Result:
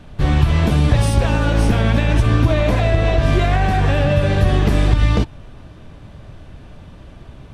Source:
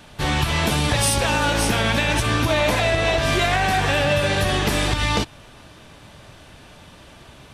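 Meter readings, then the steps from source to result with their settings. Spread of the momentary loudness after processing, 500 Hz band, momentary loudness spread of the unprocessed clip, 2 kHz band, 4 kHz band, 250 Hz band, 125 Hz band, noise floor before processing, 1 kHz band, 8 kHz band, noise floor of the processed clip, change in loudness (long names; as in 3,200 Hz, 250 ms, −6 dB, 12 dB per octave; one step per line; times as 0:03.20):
2 LU, +1.5 dB, 3 LU, −4.0 dB, −6.5 dB, +5.5 dB, +9.0 dB, −46 dBFS, −1.5 dB, −10.0 dB, −40 dBFS, +3.0 dB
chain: spectral tilt −3 dB per octave
notch filter 880 Hz, Q 24
level −1 dB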